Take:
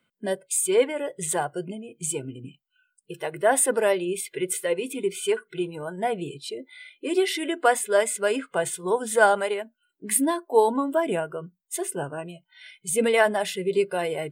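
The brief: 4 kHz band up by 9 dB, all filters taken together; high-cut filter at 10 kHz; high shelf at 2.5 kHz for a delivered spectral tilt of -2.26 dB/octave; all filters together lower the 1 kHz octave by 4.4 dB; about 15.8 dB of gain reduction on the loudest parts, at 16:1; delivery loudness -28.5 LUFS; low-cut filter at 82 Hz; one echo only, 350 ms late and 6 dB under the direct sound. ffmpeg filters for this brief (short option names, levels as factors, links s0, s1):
-af "highpass=82,lowpass=10000,equalizer=f=1000:t=o:g=-8,highshelf=f=2500:g=7.5,equalizer=f=4000:t=o:g=6.5,acompressor=threshold=0.0398:ratio=16,aecho=1:1:350:0.501,volume=1.5"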